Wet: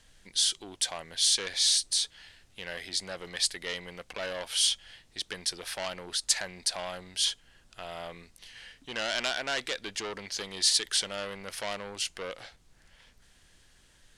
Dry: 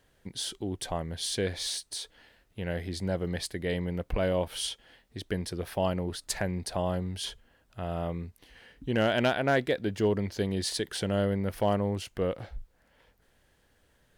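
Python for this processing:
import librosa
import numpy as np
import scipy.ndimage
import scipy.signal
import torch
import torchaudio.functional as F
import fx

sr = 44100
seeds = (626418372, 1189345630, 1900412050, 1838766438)

y = 10.0 ** (-26.5 / 20.0) * np.tanh(x / 10.0 ** (-26.5 / 20.0))
y = fx.weighting(y, sr, curve='ITU-R 468')
y = fx.dmg_noise_colour(y, sr, seeds[0], colour='brown', level_db=-61.0)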